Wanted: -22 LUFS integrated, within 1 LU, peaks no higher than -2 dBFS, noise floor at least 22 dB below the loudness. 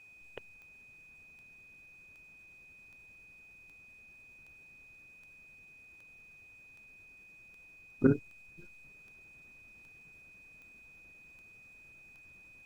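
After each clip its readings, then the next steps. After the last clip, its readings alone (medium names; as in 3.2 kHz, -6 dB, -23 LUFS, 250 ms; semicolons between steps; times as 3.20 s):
clicks found 16; steady tone 2.5 kHz; tone level -54 dBFS; loudness -34.0 LUFS; peak level -12.0 dBFS; loudness target -22.0 LUFS
-> de-click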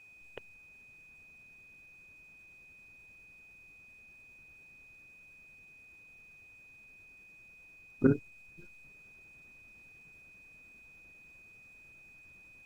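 clicks found 0; steady tone 2.5 kHz; tone level -54 dBFS
-> band-stop 2.5 kHz, Q 30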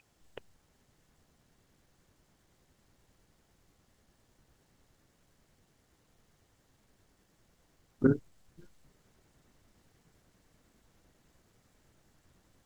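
steady tone not found; loudness -30.0 LUFS; peak level -12.0 dBFS; loudness target -22.0 LUFS
-> trim +8 dB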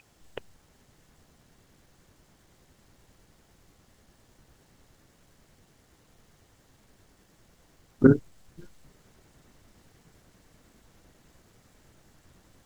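loudness -22.0 LUFS; peak level -4.0 dBFS; noise floor -64 dBFS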